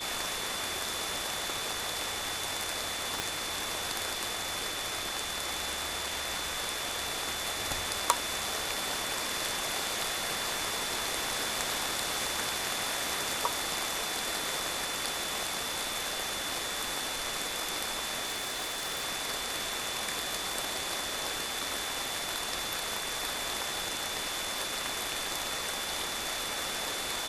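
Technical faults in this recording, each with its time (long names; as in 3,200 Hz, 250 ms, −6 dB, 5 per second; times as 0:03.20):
whistle 3,500 Hz −39 dBFS
0:03.20: click −14 dBFS
0:18.25–0:19.04: clipping −29.5 dBFS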